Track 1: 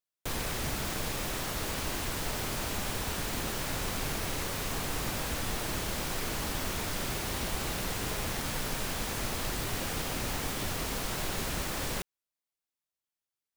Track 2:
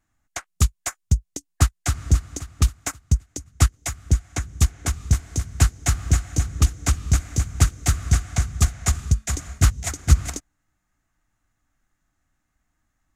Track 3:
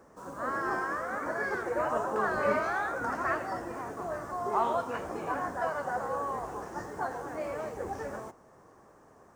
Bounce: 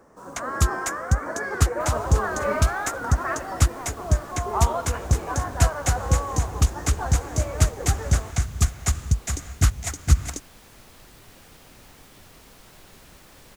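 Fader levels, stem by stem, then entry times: −15.5, −2.0, +2.5 decibels; 1.55, 0.00, 0.00 seconds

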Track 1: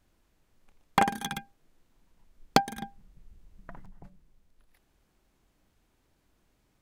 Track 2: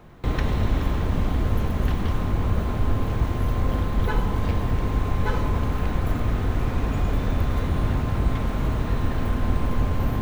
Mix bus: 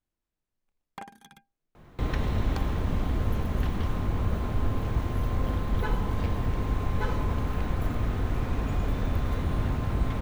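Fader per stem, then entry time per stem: −18.5, −4.5 decibels; 0.00, 1.75 seconds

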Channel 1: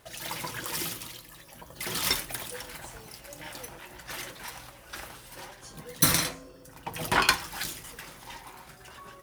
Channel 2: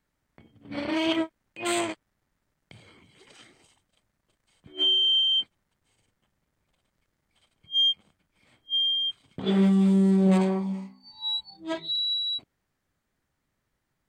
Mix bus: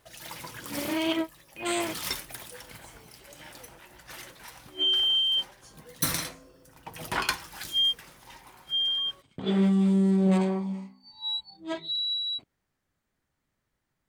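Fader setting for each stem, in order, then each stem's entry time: −5.5, −2.0 decibels; 0.00, 0.00 seconds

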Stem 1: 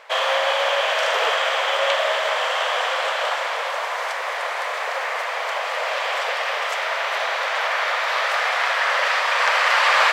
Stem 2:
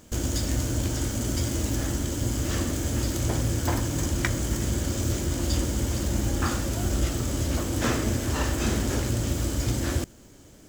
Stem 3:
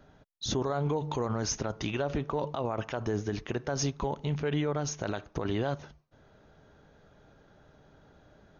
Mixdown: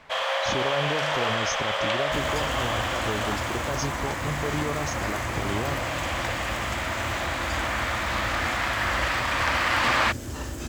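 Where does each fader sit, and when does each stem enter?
−6.0, −7.5, −0.5 decibels; 0.00, 2.00, 0.00 seconds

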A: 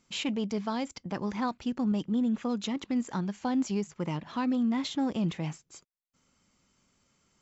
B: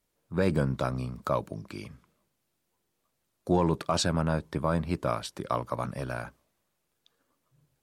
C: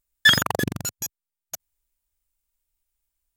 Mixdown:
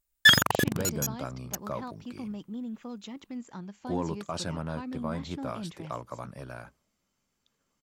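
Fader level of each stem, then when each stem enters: −9.5, −7.5, −1.5 decibels; 0.40, 0.40, 0.00 seconds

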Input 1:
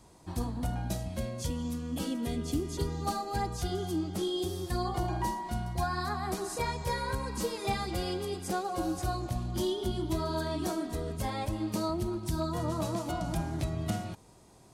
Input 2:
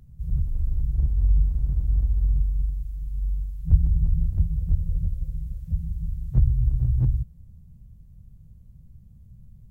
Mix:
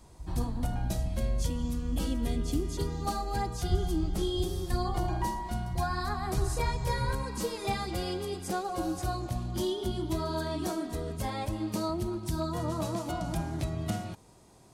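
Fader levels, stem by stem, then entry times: 0.0, −11.5 decibels; 0.00, 0.00 seconds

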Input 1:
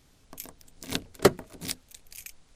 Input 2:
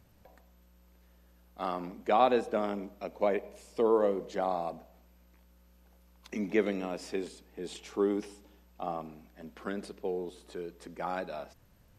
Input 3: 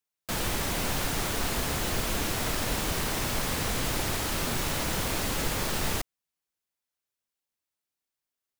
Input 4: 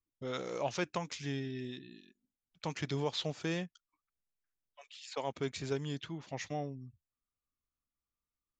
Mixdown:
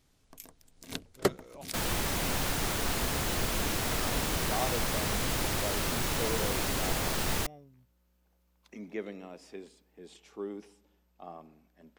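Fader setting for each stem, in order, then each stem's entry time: −7.5, −10.0, −1.5, −14.0 decibels; 0.00, 2.40, 1.45, 0.95 seconds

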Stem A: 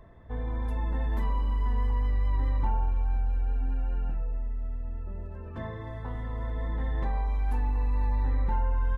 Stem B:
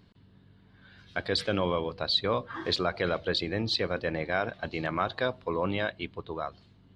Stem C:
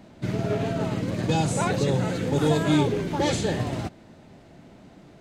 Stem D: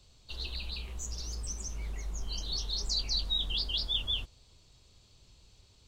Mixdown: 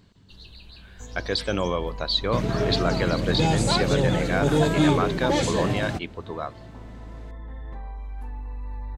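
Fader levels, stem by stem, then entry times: −7.5, +2.5, +1.0, −8.0 decibels; 0.70, 0.00, 2.10, 0.00 seconds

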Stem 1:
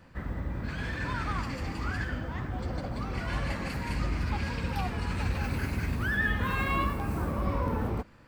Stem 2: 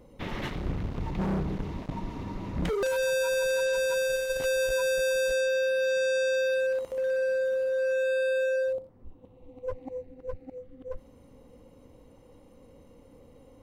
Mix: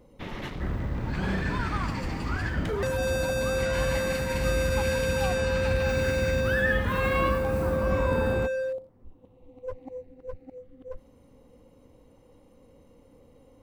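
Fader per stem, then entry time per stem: +2.0, −2.0 decibels; 0.45, 0.00 seconds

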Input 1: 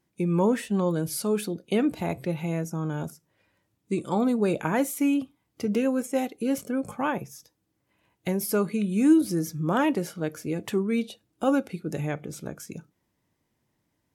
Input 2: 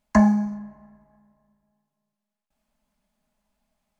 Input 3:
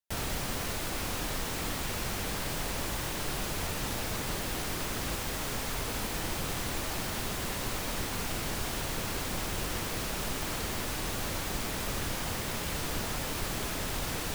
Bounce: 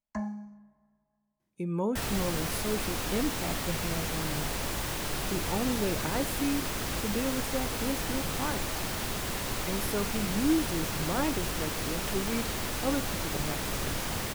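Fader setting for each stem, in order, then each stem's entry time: −7.5, −18.5, +1.0 decibels; 1.40, 0.00, 1.85 seconds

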